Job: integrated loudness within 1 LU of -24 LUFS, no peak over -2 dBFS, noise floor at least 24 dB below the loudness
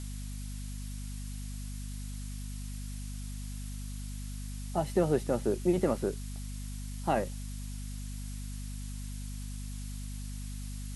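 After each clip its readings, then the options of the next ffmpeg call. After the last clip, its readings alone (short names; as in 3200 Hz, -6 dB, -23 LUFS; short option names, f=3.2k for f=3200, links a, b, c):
hum 50 Hz; harmonics up to 250 Hz; hum level -37 dBFS; noise floor -39 dBFS; noise floor target -61 dBFS; loudness -36.5 LUFS; peak -15.5 dBFS; loudness target -24.0 LUFS
-> -af "bandreject=f=50:t=h:w=4,bandreject=f=100:t=h:w=4,bandreject=f=150:t=h:w=4,bandreject=f=200:t=h:w=4,bandreject=f=250:t=h:w=4"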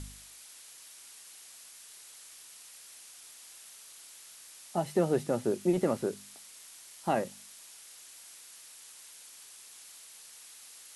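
hum none; noise floor -52 dBFS; noise floor target -56 dBFS
-> -af "afftdn=nr=6:nf=-52"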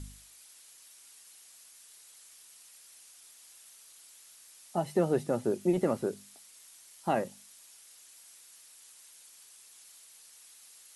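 noise floor -56 dBFS; loudness -31.5 LUFS; peak -15.0 dBFS; loudness target -24.0 LUFS
-> -af "volume=7.5dB"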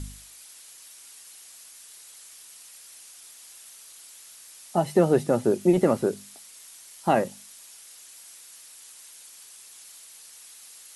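loudness -24.0 LUFS; peak -7.5 dBFS; noise floor -48 dBFS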